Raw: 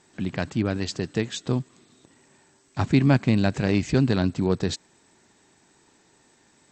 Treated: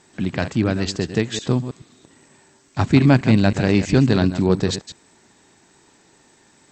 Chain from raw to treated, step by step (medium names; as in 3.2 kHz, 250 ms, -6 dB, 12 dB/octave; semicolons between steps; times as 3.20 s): chunks repeated in reverse 107 ms, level -10.5 dB; trim +5 dB